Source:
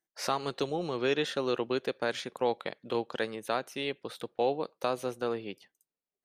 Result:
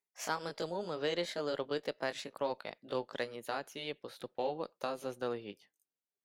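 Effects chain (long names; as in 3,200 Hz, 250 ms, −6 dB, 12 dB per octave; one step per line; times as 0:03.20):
pitch glide at a constant tempo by +3 semitones ending unshifted
harmonic generator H 4 −27 dB, 6 −29 dB, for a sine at −15.5 dBFS
level −4.5 dB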